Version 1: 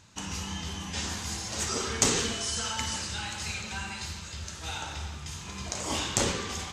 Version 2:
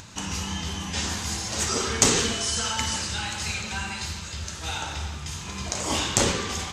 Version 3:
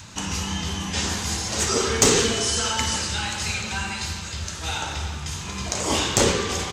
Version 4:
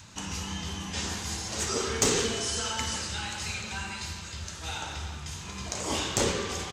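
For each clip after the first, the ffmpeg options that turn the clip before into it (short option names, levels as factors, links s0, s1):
-af "acompressor=mode=upward:threshold=0.00794:ratio=2.5,volume=1.78"
-filter_complex "[0:a]adynamicequalizer=threshold=0.00794:dfrequency=430:dqfactor=2.5:tfrequency=430:tqfactor=2.5:attack=5:release=100:ratio=0.375:range=2.5:mode=boostabove:tftype=bell,asplit=2[s0][s1];[s1]adelay=349.9,volume=0.158,highshelf=f=4000:g=-7.87[s2];[s0][s2]amix=inputs=2:normalize=0,acontrast=49,volume=0.708"
-filter_complex "[0:a]asplit=2[s0][s1];[s1]adelay=170,highpass=300,lowpass=3400,asoftclip=type=hard:threshold=0.237,volume=0.224[s2];[s0][s2]amix=inputs=2:normalize=0,volume=0.422"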